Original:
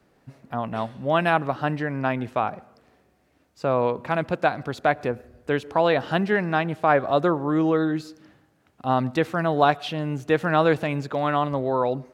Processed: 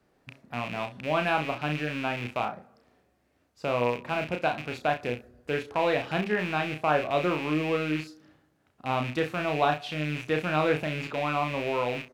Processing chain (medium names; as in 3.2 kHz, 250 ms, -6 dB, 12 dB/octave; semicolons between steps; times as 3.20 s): rattle on loud lows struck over -35 dBFS, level -19 dBFS; on a send: early reflections 33 ms -5.5 dB, 65 ms -16 dB; on the sum: trim -6.5 dB